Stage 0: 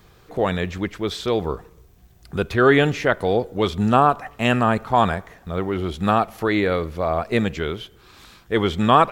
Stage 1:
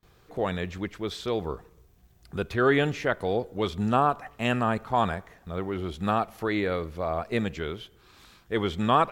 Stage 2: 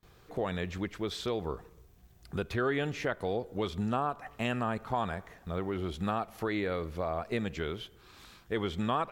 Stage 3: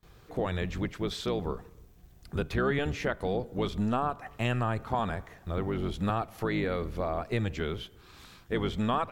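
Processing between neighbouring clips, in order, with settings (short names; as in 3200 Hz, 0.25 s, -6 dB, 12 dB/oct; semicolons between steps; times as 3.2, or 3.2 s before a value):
gate with hold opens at -44 dBFS; gain -7 dB
compressor 2.5:1, threshold -31 dBFS, peak gain reduction 10 dB
octaver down 1 oct, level -1 dB; gain +1.5 dB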